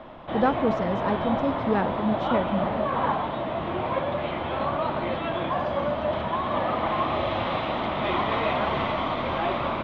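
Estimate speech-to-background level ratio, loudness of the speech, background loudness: -0.5 dB, -27.5 LUFS, -27.0 LUFS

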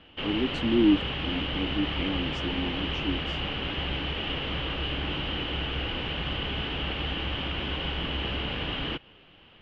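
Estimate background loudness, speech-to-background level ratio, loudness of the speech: -30.5 LUFS, 1.0 dB, -29.5 LUFS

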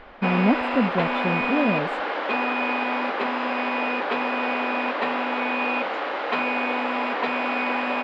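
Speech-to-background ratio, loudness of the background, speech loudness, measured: -0.5 dB, -24.5 LUFS, -25.0 LUFS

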